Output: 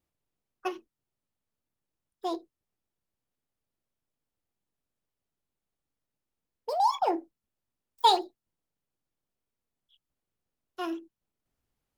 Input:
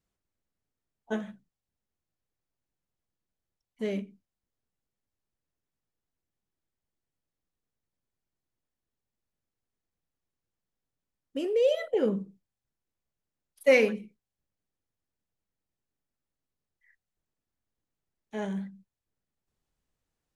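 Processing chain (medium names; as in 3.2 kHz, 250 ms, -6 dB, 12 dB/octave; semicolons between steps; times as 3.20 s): wide varispeed 1.7×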